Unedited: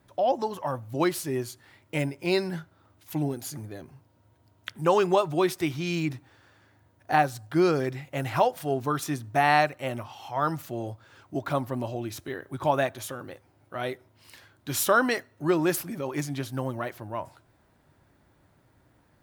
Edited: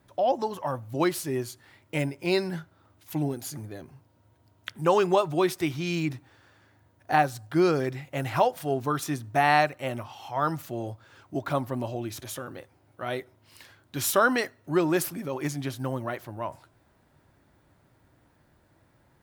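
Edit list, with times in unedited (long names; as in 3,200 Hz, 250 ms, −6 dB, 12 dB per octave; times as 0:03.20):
0:12.22–0:12.95: remove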